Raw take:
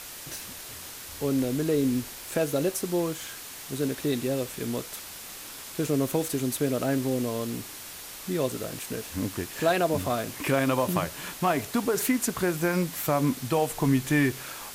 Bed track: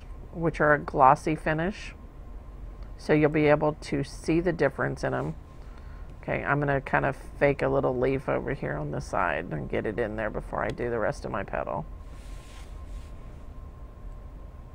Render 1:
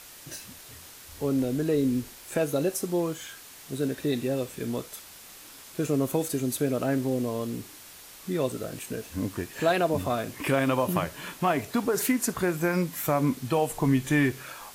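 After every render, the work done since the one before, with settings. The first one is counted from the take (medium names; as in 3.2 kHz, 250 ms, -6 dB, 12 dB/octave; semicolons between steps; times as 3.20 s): noise print and reduce 6 dB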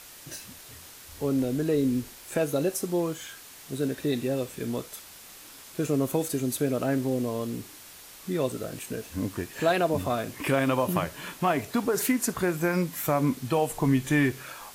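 no audible change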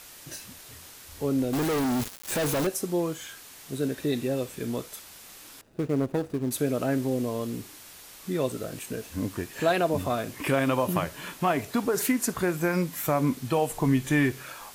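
1.53–2.67 s: companded quantiser 2-bit; 5.61–6.51 s: median filter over 41 samples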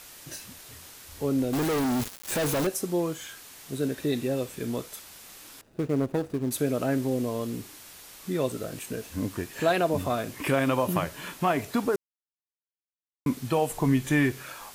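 11.96–13.26 s: mute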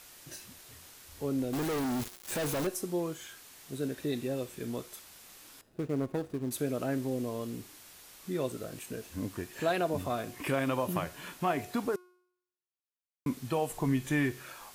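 feedback comb 360 Hz, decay 0.71 s, mix 50%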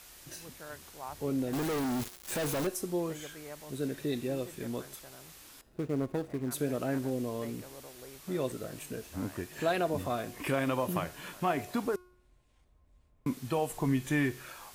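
add bed track -25 dB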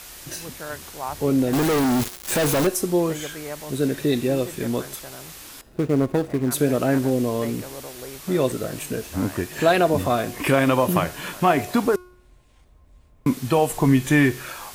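trim +12 dB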